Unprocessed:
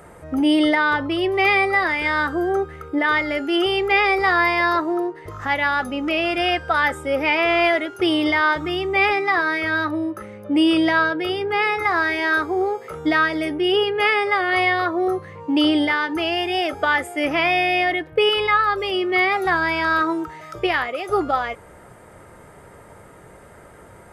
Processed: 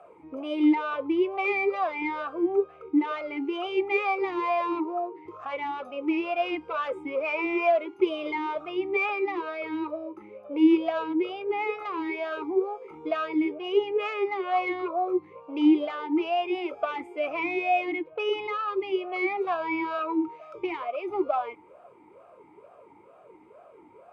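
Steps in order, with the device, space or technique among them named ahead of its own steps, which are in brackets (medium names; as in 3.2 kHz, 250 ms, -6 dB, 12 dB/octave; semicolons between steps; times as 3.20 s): talk box (valve stage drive 12 dB, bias 0.3; talking filter a-u 2.2 Hz); trim +4 dB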